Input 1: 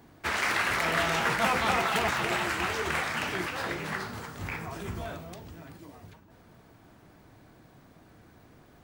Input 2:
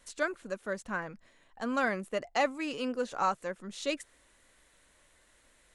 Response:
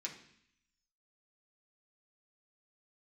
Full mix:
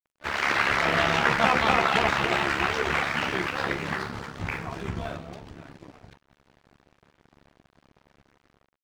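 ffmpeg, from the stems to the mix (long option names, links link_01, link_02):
-filter_complex "[0:a]lowpass=5000,volume=1.5dB[link_01];[1:a]volume=-17dB[link_02];[link_01][link_02]amix=inputs=2:normalize=0,dynaudnorm=framelen=110:gausssize=7:maxgain=6.5dB,tremolo=f=70:d=0.667,aeval=exprs='sgn(val(0))*max(abs(val(0))-0.00447,0)':channel_layout=same"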